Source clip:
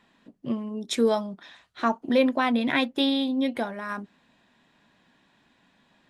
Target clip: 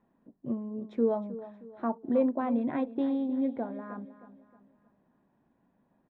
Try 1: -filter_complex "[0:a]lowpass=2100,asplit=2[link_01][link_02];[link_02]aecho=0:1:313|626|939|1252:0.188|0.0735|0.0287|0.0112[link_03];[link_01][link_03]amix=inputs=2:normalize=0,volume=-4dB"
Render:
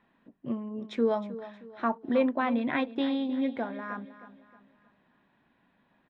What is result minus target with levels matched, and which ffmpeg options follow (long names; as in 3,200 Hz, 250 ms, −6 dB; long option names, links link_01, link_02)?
2,000 Hz band +12.0 dB
-filter_complex "[0:a]lowpass=770,asplit=2[link_01][link_02];[link_02]aecho=0:1:313|626|939|1252:0.188|0.0735|0.0287|0.0112[link_03];[link_01][link_03]amix=inputs=2:normalize=0,volume=-4dB"